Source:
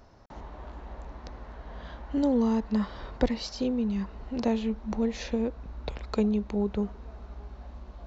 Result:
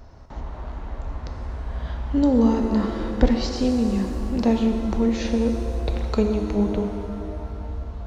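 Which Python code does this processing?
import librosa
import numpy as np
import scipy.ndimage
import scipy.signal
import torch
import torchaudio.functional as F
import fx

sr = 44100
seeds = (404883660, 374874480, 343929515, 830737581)

y = fx.low_shelf(x, sr, hz=110.0, db=9.5)
y = fx.rev_shimmer(y, sr, seeds[0], rt60_s=2.4, semitones=7, shimmer_db=-8, drr_db=4.5)
y = y * librosa.db_to_amplitude(4.0)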